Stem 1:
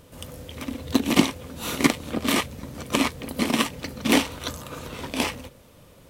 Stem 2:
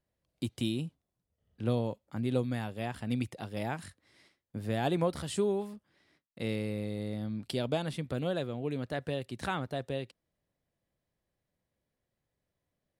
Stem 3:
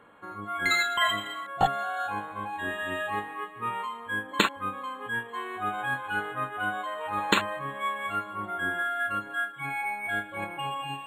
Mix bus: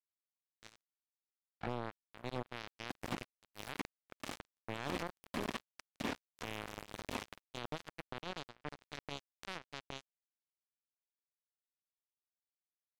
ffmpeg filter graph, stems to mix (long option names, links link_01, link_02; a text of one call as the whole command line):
ffmpeg -i stem1.wav -i stem2.wav -i stem3.wav -filter_complex "[0:a]adelay=1950,volume=-3dB,afade=type=in:start_time=2.65:duration=0.55:silence=0.251189,afade=type=in:start_time=4.93:duration=0.55:silence=0.446684[link_01];[1:a]lowpass=frequency=3900:poles=1,bandreject=frequency=131:width_type=h:width=4,bandreject=frequency=262:width_type=h:width=4,bandreject=frequency=393:width_type=h:width=4,bandreject=frequency=524:width_type=h:width=4,bandreject=frequency=655:width_type=h:width=4,bandreject=frequency=786:width_type=h:width=4,dynaudnorm=framelen=250:gausssize=7:maxgain=9dB,volume=-9.5dB,asplit=2[link_02][link_03];[link_03]volume=-20.5dB[link_04];[2:a]lowpass=1300,aecho=1:1:5.4:0.47,volume=-14dB[link_05];[link_01][link_02]amix=inputs=2:normalize=0,acrossover=split=2900[link_06][link_07];[link_07]acompressor=threshold=-43dB:ratio=4:attack=1:release=60[link_08];[link_06][link_08]amix=inputs=2:normalize=0,alimiter=limit=-18.5dB:level=0:latency=1:release=451,volume=0dB[link_09];[link_04]aecho=0:1:985:1[link_10];[link_05][link_09][link_10]amix=inputs=3:normalize=0,acrusher=bits=3:mix=0:aa=0.5,alimiter=level_in=2.5dB:limit=-24dB:level=0:latency=1:release=14,volume=-2.5dB" out.wav